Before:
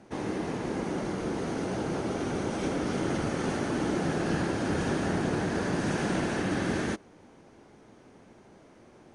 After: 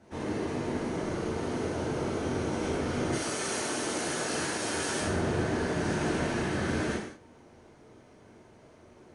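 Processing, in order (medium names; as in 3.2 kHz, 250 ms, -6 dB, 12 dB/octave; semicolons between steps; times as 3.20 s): 3.12–5.01 s: RIAA curve recording; gated-style reverb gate 240 ms falling, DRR -6.5 dB; trim -7.5 dB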